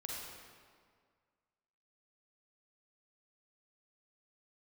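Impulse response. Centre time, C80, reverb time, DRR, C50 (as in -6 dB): 0.113 s, 0.5 dB, 1.9 s, -3.5 dB, -2.0 dB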